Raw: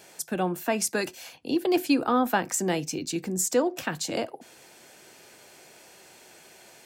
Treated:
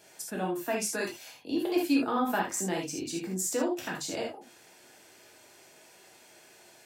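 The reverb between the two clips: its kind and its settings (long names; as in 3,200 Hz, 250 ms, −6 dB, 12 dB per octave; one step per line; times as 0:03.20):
reverb whose tail is shaped and stops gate 100 ms flat, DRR −2 dB
level −8 dB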